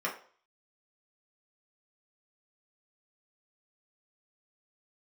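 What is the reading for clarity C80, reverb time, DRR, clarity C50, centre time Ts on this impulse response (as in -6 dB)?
14.5 dB, 0.45 s, -3.5 dB, 9.5 dB, 21 ms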